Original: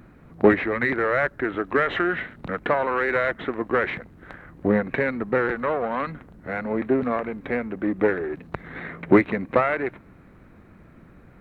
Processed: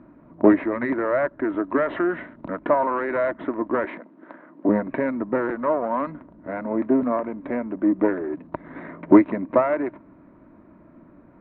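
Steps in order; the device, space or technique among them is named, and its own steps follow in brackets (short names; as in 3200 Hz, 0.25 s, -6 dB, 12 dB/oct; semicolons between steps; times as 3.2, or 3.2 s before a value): 3.85–4.69 HPF 210 Hz 24 dB/oct; inside a cardboard box (LPF 3100 Hz 12 dB/oct; small resonant body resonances 300/610/940 Hz, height 17 dB, ringing for 25 ms); gain -10.5 dB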